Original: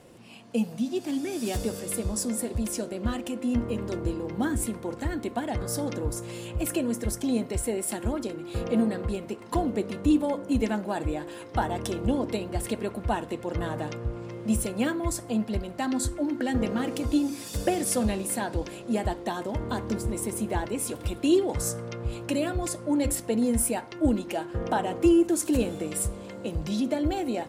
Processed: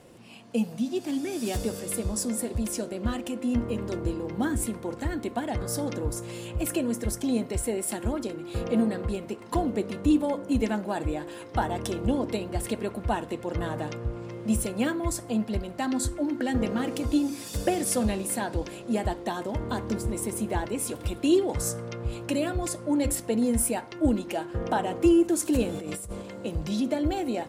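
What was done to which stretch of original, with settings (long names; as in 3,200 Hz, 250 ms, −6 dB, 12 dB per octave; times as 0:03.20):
0:25.69–0:26.22: compressor whose output falls as the input rises −35 dBFS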